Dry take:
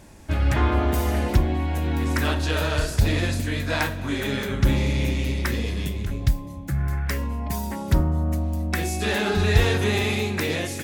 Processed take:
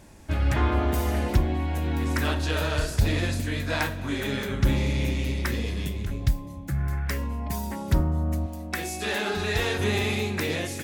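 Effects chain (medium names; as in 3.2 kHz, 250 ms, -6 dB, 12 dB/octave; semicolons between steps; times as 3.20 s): 8.46–9.79 s: bass shelf 200 Hz -11 dB; trim -2.5 dB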